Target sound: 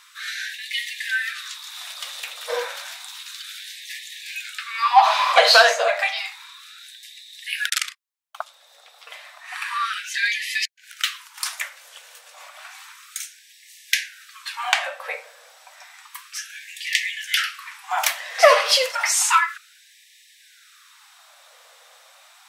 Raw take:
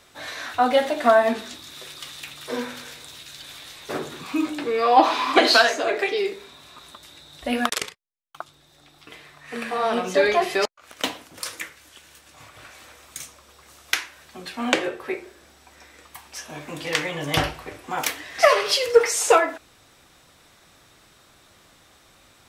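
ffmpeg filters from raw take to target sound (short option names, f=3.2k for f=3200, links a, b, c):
-af "acontrast=41,afftfilt=real='re*gte(b*sr/1024,440*pow(1700/440,0.5+0.5*sin(2*PI*0.31*pts/sr)))':imag='im*gte(b*sr/1024,440*pow(1700/440,0.5+0.5*sin(2*PI*0.31*pts/sr)))':win_size=1024:overlap=0.75,volume=-1dB"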